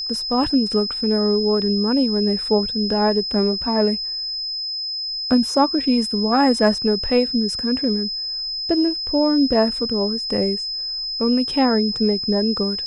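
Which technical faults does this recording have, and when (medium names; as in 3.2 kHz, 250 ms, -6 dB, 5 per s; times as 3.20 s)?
whine 5.1 kHz -24 dBFS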